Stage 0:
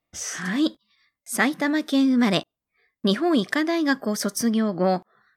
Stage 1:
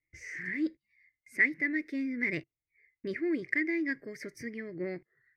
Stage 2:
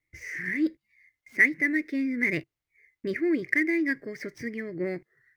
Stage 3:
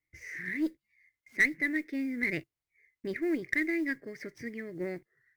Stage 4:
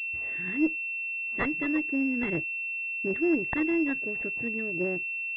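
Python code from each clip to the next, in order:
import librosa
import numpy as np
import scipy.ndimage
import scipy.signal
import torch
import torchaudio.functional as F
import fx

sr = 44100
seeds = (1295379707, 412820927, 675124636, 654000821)

y1 = fx.curve_eq(x, sr, hz=(140.0, 210.0, 330.0, 490.0, 780.0, 1300.0, 2100.0, 3300.0, 4700.0, 7900.0), db=(0, -18, -2, -10, -27, -22, 10, -28, -16, -23))
y1 = y1 * librosa.db_to_amplitude(-5.0)
y2 = scipy.ndimage.median_filter(y1, 5, mode='constant')
y2 = y2 * librosa.db_to_amplitude(5.5)
y3 = fx.cheby_harmonics(y2, sr, harmonics=(4, 5, 7), levels_db=(-26, -24, -27), full_scale_db=-8.5)
y3 = fx.mod_noise(y3, sr, seeds[0], snr_db=33)
y3 = y3 * librosa.db_to_amplitude(-5.5)
y4 = fx.pwm(y3, sr, carrier_hz=2700.0)
y4 = y4 * librosa.db_to_amplitude(5.0)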